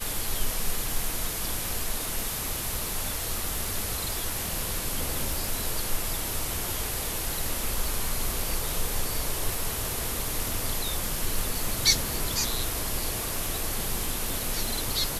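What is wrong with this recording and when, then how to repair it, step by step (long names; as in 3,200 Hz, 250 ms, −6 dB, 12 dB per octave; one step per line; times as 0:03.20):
surface crackle 58 per second −31 dBFS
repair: click removal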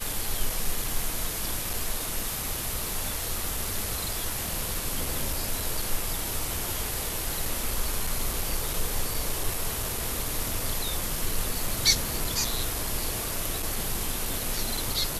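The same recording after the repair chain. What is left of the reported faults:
none of them is left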